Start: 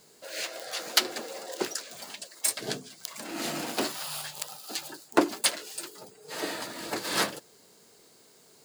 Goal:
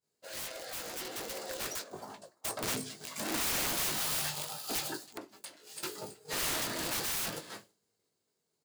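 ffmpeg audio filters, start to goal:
-filter_complex "[0:a]equalizer=f=76:t=o:w=1.7:g=9,aecho=1:1:323:0.106,flanger=delay=9:depth=7.4:regen=-78:speed=0.39:shape=triangular,asplit=3[a][b][c];[a]afade=t=out:st=1.81:d=0.02[d];[b]highshelf=f=1.6k:t=q:w=1.5:g=-12.5,afade=t=in:st=1.81:d=0.02,afade=t=out:st=2.62:d=0.02[e];[c]afade=t=in:st=2.62:d=0.02[f];[d][e][f]amix=inputs=3:normalize=0,asplit=2[g][h];[h]adelay=19,volume=-7dB[i];[g][i]amix=inputs=2:normalize=0,alimiter=limit=-21.5dB:level=0:latency=1:release=184,asettb=1/sr,asplit=3[j][k][l];[j]atrim=end=4.964[m];[k]atrim=start=4.96:end=5.83,asetpts=PTS-STARTPTS,afade=t=in:d=0.004:c=qsin,afade=t=out:st=0.866:d=0.004:c=qsin,acompressor=threshold=-48dB:ratio=10[n];[l]atrim=start=5.826[o];[m][n]acrossfade=d=0.004:c1=hsin:c2=qsin[p];[p][o]acrossfade=d=0.004:c1=qsin:c2=hsin,aeval=exprs='(mod(53.1*val(0)+1,2)-1)/53.1':c=same,agate=range=-33dB:threshold=-47dB:ratio=3:detection=peak,dynaudnorm=f=300:g=13:m=7.5dB"

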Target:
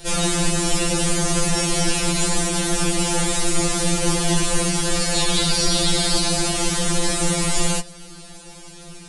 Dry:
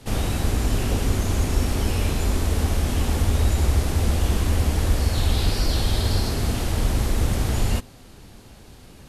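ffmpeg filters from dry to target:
-af "aresample=22050,aresample=44100,aemphasis=mode=production:type=50kf,afftfilt=real='re*2.83*eq(mod(b,8),0)':imag='im*2.83*eq(mod(b,8),0)':win_size=2048:overlap=0.75,volume=8dB"

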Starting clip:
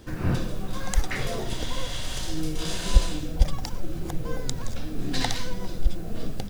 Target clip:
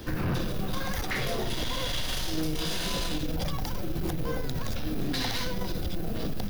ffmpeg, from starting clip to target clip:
-filter_complex "[0:a]afftfilt=real='re*lt(hypot(re,im),1.26)':imag='im*lt(hypot(re,im),1.26)':win_size=1024:overlap=0.75,acrossover=split=130[a][b];[a]acompressor=threshold=-28dB:ratio=6[c];[c][b]amix=inputs=2:normalize=0,highshelf=f=3.7k:g=7,aeval=exprs='(tanh(20*val(0)+0.2)-tanh(0.2))/20':c=same,equalizer=f=7.8k:t=o:w=0.67:g=-12,alimiter=level_in=5.5dB:limit=-24dB:level=0:latency=1:release=94,volume=-5.5dB,volume=7dB"

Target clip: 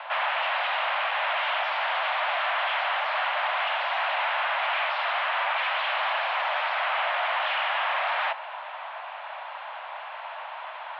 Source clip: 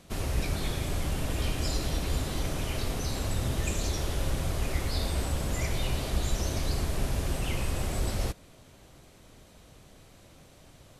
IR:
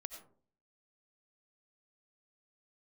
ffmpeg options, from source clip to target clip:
-filter_complex "[0:a]asplit=2[a][b];[b]highpass=f=720:p=1,volume=21dB,asoftclip=type=tanh:threshold=-15.5dB[c];[a][c]amix=inputs=2:normalize=0,lowpass=f=1.2k:p=1,volume=-6dB,aeval=exprs='0.141*sin(PI/2*4.47*val(0)/0.141)':c=same,highpass=f=260:t=q:w=0.5412,highpass=f=260:t=q:w=1.307,lowpass=f=2.9k:t=q:w=0.5176,lowpass=f=2.9k:t=q:w=0.7071,lowpass=f=2.9k:t=q:w=1.932,afreqshift=350,volume=-5dB"

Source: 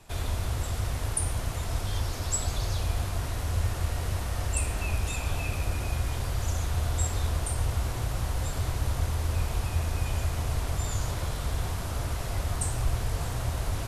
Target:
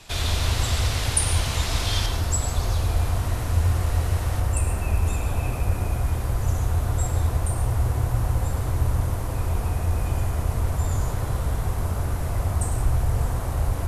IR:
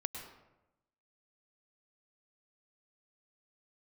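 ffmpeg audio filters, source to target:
-filter_complex "[0:a]asetnsamples=n=441:p=0,asendcmd='2.06 equalizer g -3.5;4.4 equalizer g -9.5',equalizer=f=3.9k:t=o:w=2.1:g=10[a];[1:a]atrim=start_sample=2205[b];[a][b]afir=irnorm=-1:irlink=0,volume=5dB"

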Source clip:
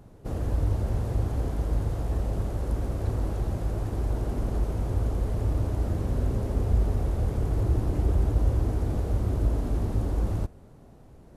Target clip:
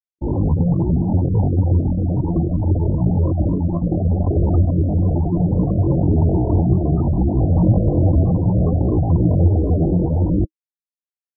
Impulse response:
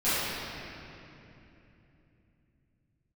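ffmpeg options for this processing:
-filter_complex "[0:a]afftfilt=real='re*gte(hypot(re,im),0.0794)':imag='im*gte(hypot(re,im),0.0794)':win_size=1024:overlap=0.75,asetrate=74167,aresample=44100,atempo=0.594604,asplit=2[a][b];[b]alimiter=limit=-21dB:level=0:latency=1:release=296,volume=-2dB[c];[a][c]amix=inputs=2:normalize=0,equalizer=f=315:t=o:w=0.33:g=12,equalizer=f=1.25k:t=o:w=0.33:g=10,equalizer=f=2.5k:t=o:w=0.33:g=-11,flanger=delay=0.6:depth=5.6:regen=-57:speed=0.65:shape=triangular,acontrast=35,volume=4.5dB"

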